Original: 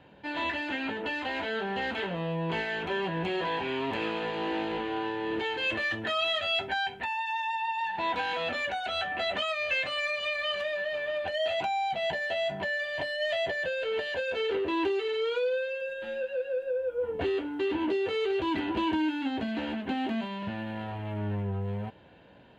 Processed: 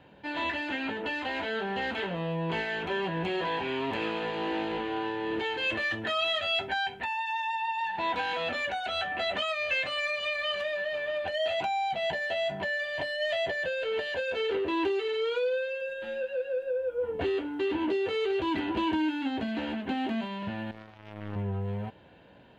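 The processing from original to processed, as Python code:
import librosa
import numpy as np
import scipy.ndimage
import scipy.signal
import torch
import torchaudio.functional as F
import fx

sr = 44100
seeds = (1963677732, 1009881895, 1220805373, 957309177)

y = fx.power_curve(x, sr, exponent=3.0, at=(20.71, 21.36))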